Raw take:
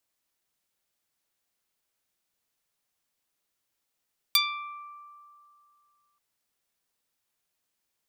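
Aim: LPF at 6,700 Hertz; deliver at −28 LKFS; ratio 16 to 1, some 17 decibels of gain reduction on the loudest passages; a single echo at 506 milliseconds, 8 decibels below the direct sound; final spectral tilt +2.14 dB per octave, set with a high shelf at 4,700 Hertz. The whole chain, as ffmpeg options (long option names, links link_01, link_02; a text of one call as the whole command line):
ffmpeg -i in.wav -af "lowpass=6700,highshelf=frequency=4700:gain=4.5,acompressor=threshold=-35dB:ratio=16,aecho=1:1:506:0.398,volume=15dB" out.wav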